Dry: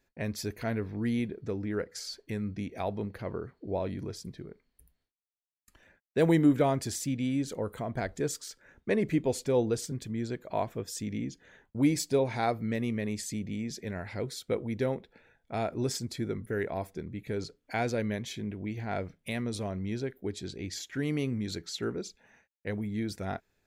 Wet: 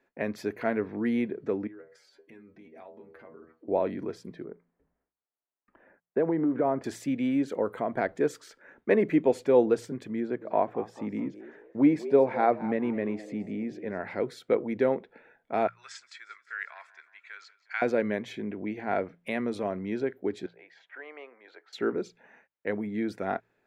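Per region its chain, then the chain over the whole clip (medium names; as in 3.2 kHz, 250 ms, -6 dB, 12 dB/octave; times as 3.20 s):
1.67–3.68 s: inharmonic resonator 78 Hz, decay 0.23 s, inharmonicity 0.002 + compression 5:1, threshold -51 dBFS
4.44–6.84 s: low-pass 1.4 kHz + compression 10:1, threshold -26 dBFS
10.20–14.00 s: low-pass 1.7 kHz 6 dB/octave + frequency-shifting echo 211 ms, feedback 33%, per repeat +100 Hz, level -17 dB
15.67–17.82 s: Chebyshev band-pass 1.3–7.6 kHz, order 3 + feedback delay 179 ms, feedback 57%, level -19.5 dB
20.46–21.73 s: high-pass 660 Hz 24 dB/octave + tape spacing loss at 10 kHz 39 dB
whole clip: three-band isolator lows -21 dB, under 210 Hz, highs -18 dB, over 2.5 kHz; de-hum 57.37 Hz, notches 3; trim +6.5 dB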